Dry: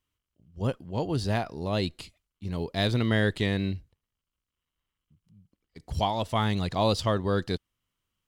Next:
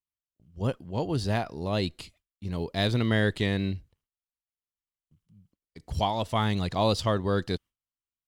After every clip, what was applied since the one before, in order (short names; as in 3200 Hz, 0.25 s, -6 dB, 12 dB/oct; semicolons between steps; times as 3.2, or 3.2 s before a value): gate with hold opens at -53 dBFS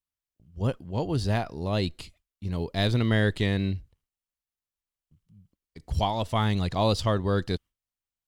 low shelf 66 Hz +9.5 dB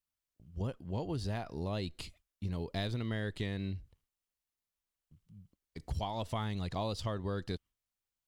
compressor 5:1, threshold -34 dBFS, peak gain reduction 14 dB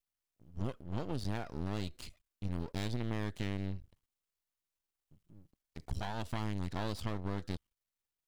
half-wave rectifier; gain +2 dB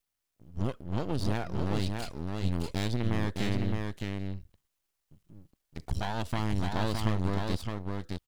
echo 0.614 s -4 dB; gain +6 dB